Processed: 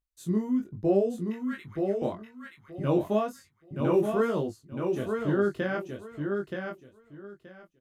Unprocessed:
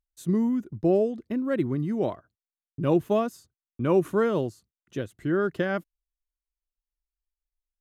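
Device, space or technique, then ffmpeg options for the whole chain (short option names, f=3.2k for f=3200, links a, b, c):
double-tracked vocal: -filter_complex "[0:a]asettb=1/sr,asplit=3[a][b][c];[a]atrim=end=1.264[d];[b]atrim=start=1.26:end=2.02,asetpts=PTS-STARTPTS,afade=t=in:d=0.004:c=qsin,afade=t=out:st=0.756:d=0.004:c=qsin,highpass=f=1.2k:w=0.5412,highpass=f=1.2k:w=1.3066[e];[c]atrim=start=2.016[f];[d][e]acrossfade=d=0.004:c1=hsin:c2=qsin[g];[g][f]acrossfade=d=0.004:c1=qsin:c2=hsin,asplit=2[h][i];[i]adelay=20,volume=-11dB[j];[h][j]amix=inputs=2:normalize=0,flanger=delay=20:depth=3.5:speed=1.1,aecho=1:1:926|1852|2778:0.562|0.107|0.0203"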